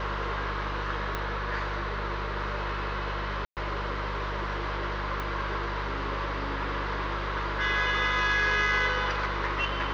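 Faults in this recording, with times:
hum 50 Hz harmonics 4 -35 dBFS
1.15 pop -16 dBFS
3.45–3.57 gap 0.118 s
5.2 pop -20 dBFS

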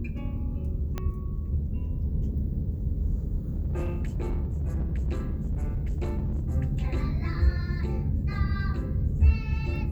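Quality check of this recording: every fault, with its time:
0.98 pop -18 dBFS
3.48–6.56 clipped -24.5 dBFS

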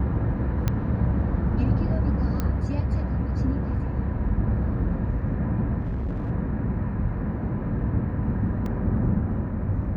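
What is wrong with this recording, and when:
0.68 pop -11 dBFS
2.4 pop -13 dBFS
5.8–6.31 clipped -25 dBFS
8.66 gap 2.2 ms

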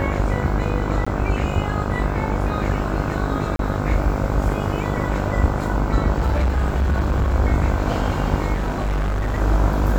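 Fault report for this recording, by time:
buzz 50 Hz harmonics 31 -24 dBFS
1.05–1.06 gap 15 ms
3.56–3.59 gap 32 ms
6.16–7.35 clipped -15 dBFS
8.53–9.39 clipped -18.5 dBFS

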